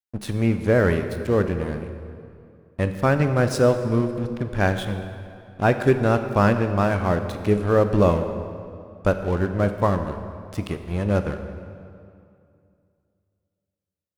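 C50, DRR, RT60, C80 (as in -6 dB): 8.5 dB, 7.5 dB, 2.4 s, 9.5 dB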